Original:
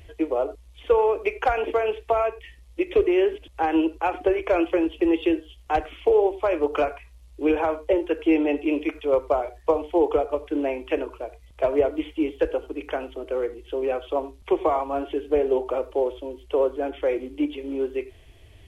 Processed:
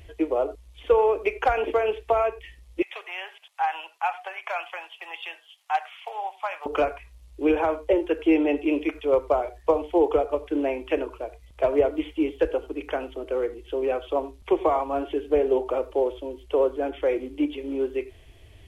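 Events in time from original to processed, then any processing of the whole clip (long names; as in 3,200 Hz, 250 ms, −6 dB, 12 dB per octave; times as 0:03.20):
0:02.82–0:06.66: Chebyshev high-pass filter 760 Hz, order 4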